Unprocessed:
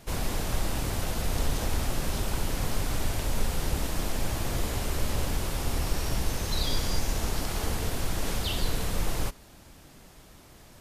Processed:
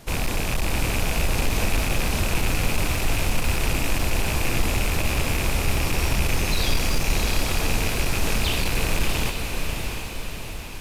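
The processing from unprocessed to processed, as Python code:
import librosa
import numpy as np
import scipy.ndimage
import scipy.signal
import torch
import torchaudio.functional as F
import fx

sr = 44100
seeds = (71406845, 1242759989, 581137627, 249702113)

y = fx.rattle_buzz(x, sr, strikes_db=-34.0, level_db=-21.0)
y = np.clip(10.0 ** (22.5 / 20.0) * y, -1.0, 1.0) / 10.0 ** (22.5 / 20.0)
y = fx.echo_diffused(y, sr, ms=683, feedback_pct=55, wet_db=-4.5)
y = y * 10.0 ** (5.0 / 20.0)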